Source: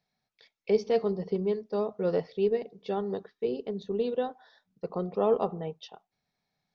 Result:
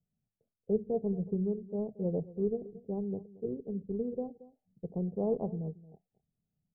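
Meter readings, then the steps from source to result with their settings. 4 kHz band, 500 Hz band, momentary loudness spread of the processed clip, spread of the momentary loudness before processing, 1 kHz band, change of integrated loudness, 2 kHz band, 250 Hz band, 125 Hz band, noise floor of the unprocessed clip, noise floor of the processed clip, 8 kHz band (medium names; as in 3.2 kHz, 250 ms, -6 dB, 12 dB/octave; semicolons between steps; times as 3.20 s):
under -35 dB, -7.0 dB, 9 LU, 12 LU, -13.5 dB, -5.0 dB, under -40 dB, 0.0 dB, +2.0 dB, -85 dBFS, under -85 dBFS, no reading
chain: local Wiener filter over 41 samples; inverse Chebyshev band-stop 1.7–4.1 kHz, stop band 60 dB; tone controls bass +13 dB, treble -11 dB; on a send: delay 227 ms -18 dB; on the sum: trim -7.5 dB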